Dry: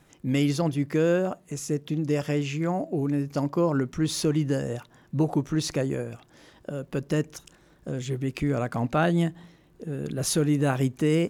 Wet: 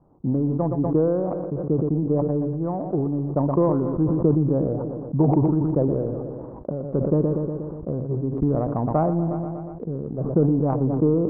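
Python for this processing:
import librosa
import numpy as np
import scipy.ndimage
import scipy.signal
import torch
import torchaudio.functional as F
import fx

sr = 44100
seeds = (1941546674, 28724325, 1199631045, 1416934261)

y = scipy.signal.sosfilt(scipy.signal.butter(8, 1100.0, 'lowpass', fs=sr, output='sos'), x)
y = fx.transient(y, sr, attack_db=8, sustain_db=-6)
y = fx.echo_feedback(y, sr, ms=120, feedback_pct=59, wet_db=-14)
y = fx.sustainer(y, sr, db_per_s=26.0)
y = y * 10.0 ** (-1.5 / 20.0)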